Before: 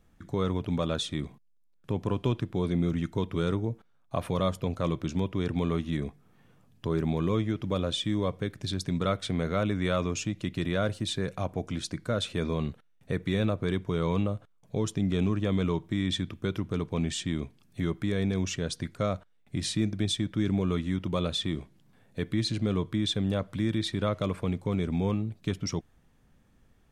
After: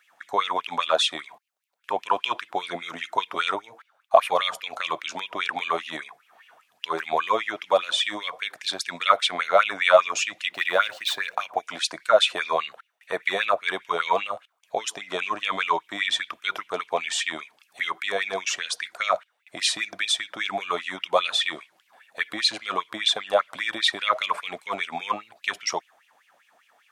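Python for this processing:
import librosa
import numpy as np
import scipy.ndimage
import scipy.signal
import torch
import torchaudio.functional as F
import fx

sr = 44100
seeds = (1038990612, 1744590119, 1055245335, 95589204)

y = fx.median_filter(x, sr, points=5, at=(10.49, 11.56))
y = fx.filter_lfo_highpass(y, sr, shape='sine', hz=5.0, low_hz=650.0, high_hz=2800.0, q=6.4)
y = y * librosa.db_to_amplitude(7.0)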